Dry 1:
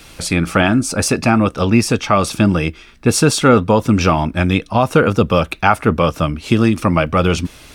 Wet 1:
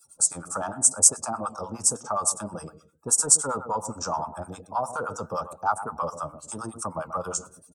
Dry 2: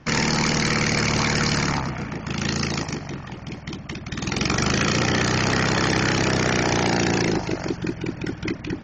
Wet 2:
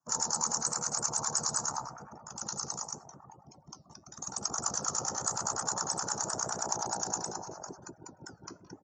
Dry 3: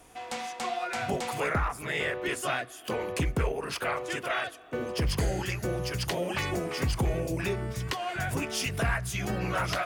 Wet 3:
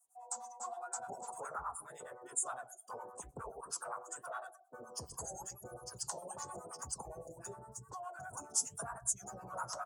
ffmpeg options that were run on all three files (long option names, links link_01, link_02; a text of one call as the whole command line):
ffmpeg -i in.wav -filter_complex "[0:a]highpass=63,asplit=2[link_01][link_02];[link_02]adelay=128,lowpass=frequency=1300:poles=1,volume=-11.5dB,asplit=2[link_03][link_04];[link_04]adelay=128,lowpass=frequency=1300:poles=1,volume=0.32,asplit=2[link_05][link_06];[link_06]adelay=128,lowpass=frequency=1300:poles=1,volume=0.32[link_07];[link_03][link_05][link_07]amix=inputs=3:normalize=0[link_08];[link_01][link_08]amix=inputs=2:normalize=0,acrossover=split=8500[link_09][link_10];[link_10]acompressor=threshold=-53dB:ratio=4:attack=1:release=60[link_11];[link_09][link_11]amix=inputs=2:normalize=0,aemphasis=mode=production:type=50fm,acrossover=split=130|7900[link_12][link_13][link_14];[link_13]acontrast=20[link_15];[link_12][link_15][link_14]amix=inputs=3:normalize=0,afftdn=noise_reduction=23:noise_floor=-33,crystalizer=i=10:c=0,firequalizer=gain_entry='entry(110,0);entry(320,-4);entry(500,4);entry(900,11);entry(1400,1);entry(2100,-28);entry(3100,-27);entry(7600,6);entry(14000,-7)':delay=0.05:min_phase=1,acrossover=split=730[link_16][link_17];[link_16]aeval=exprs='val(0)*(1-1/2+1/2*cos(2*PI*9.7*n/s))':channel_layout=same[link_18];[link_17]aeval=exprs='val(0)*(1-1/2-1/2*cos(2*PI*9.7*n/s))':channel_layout=same[link_19];[link_18][link_19]amix=inputs=2:normalize=0,flanger=delay=2.5:depth=6:regen=-83:speed=0.88:shape=sinusoidal,volume=-17dB" out.wav